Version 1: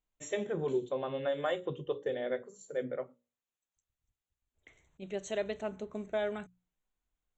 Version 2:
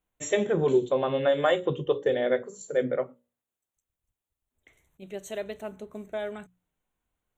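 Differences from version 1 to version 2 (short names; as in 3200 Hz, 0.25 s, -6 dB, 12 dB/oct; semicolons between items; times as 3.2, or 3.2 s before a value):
first voice +9.5 dB; master: remove steep low-pass 7700 Hz 96 dB/oct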